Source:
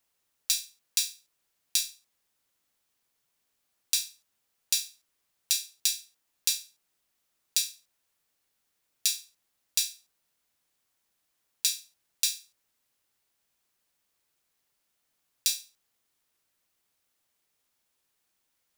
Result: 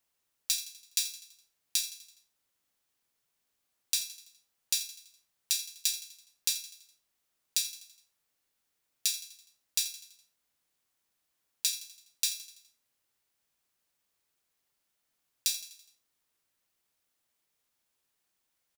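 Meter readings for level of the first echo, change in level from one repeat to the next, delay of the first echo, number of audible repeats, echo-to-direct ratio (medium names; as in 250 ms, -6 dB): -14.0 dB, -6.0 dB, 83 ms, 4, -12.5 dB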